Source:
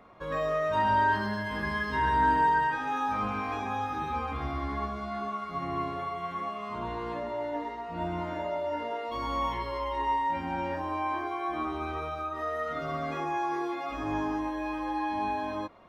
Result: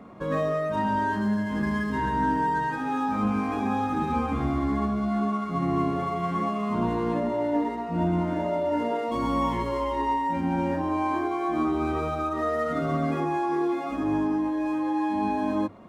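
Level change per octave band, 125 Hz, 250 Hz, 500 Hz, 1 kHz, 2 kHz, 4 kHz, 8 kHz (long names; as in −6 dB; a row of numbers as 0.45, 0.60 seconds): +8.0 dB, +10.5 dB, +5.5 dB, +1.0 dB, −1.5 dB, −1.0 dB, can't be measured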